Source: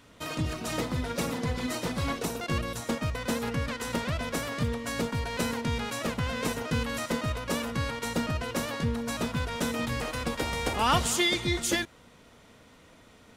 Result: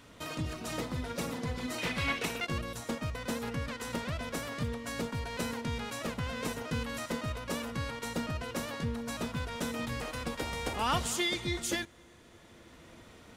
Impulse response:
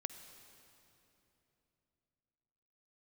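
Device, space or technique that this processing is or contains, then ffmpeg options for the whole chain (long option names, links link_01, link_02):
ducked reverb: -filter_complex "[0:a]asplit=3[link_01][link_02][link_03];[1:a]atrim=start_sample=2205[link_04];[link_02][link_04]afir=irnorm=-1:irlink=0[link_05];[link_03]apad=whole_len=589560[link_06];[link_05][link_06]sidechaincompress=threshold=-45dB:ratio=8:attack=16:release=754,volume=4.5dB[link_07];[link_01][link_07]amix=inputs=2:normalize=0,asettb=1/sr,asplit=3[link_08][link_09][link_10];[link_08]atrim=end=1.784[link_11];[link_09]atrim=start=1.78:end=2.45,asetpts=PTS-STARTPTS,afade=type=in:duration=0.004:curve=qsin,afade=type=out:start_time=0.666:duration=0.004:curve=qsin,equalizer=frequency=2400:width=1.1:gain=13[link_12];[link_10]atrim=start=2.446[link_13];[link_11][link_12]acrossfade=duration=0.004:curve1=hsin:curve2=qsin[link_14];[link_14][link_13]acrossfade=duration=0.004:curve1=qsin:curve2=hsin,volume=-6.5dB"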